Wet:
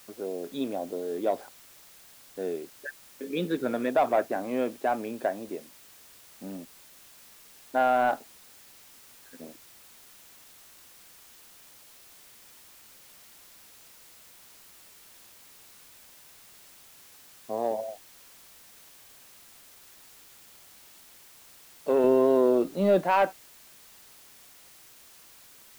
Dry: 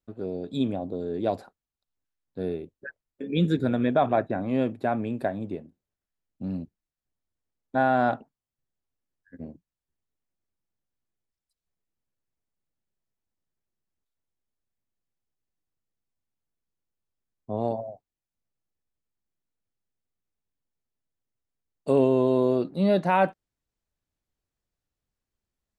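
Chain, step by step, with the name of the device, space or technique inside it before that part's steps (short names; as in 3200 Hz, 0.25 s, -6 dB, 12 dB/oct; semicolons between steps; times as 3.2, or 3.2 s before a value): tape answering machine (BPF 370–3000 Hz; soft clip -15.5 dBFS, distortion -19 dB; wow and flutter; white noise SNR 20 dB); 22.04–23.04 low shelf 330 Hz +8.5 dB; gain +1.5 dB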